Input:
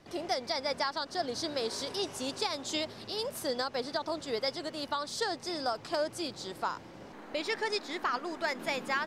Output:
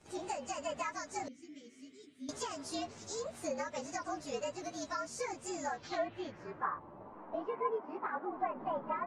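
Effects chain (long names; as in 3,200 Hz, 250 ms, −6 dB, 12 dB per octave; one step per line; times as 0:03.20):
partials spread apart or drawn together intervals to 112%
0:07.47–0:08.29: high-pass filter 96 Hz
low-pass filter sweep 9,300 Hz → 980 Hz, 0:05.45–0:06.79
0:01.28–0:02.29: formant filter i
treble cut that deepens with the level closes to 2,900 Hz, closed at −30.5 dBFS
level −1.5 dB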